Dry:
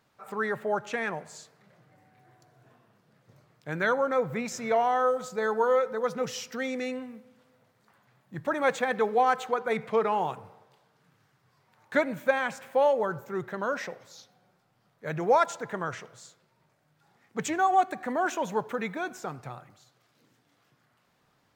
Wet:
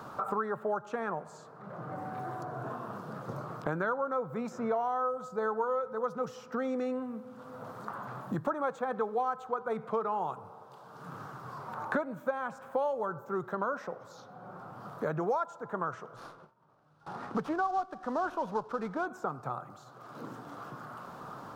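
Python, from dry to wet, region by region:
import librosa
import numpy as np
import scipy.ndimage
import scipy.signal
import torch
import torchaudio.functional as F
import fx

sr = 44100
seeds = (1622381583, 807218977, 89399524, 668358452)

y = fx.chain(x, sr, fx.cvsd(bps=32000),
    fx.gate_hold(open_db=-55.0, close_db=-61.0, hold_ms=71.0, range_db=-21, attack_ms=1.4, release_ms=100.0),
    fx.running_max(window=3), at=(16.16, 19.06))
y = fx.high_shelf_res(y, sr, hz=1600.0, db=-7.5, q=3.0)
y = fx.band_squash(y, sr, depth_pct=100)
y = F.gain(torch.from_numpy(y), -6.5).numpy()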